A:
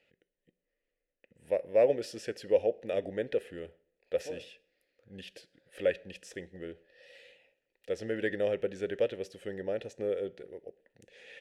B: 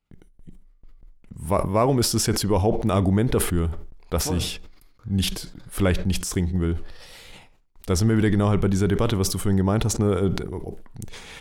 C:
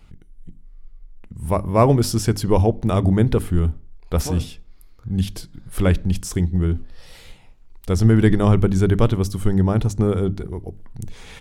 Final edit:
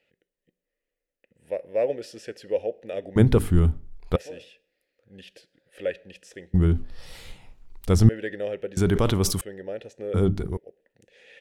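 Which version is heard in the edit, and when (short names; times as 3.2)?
A
3.16–4.16 from C
6.54–8.09 from C
8.77–9.41 from B
10.14–10.57 from C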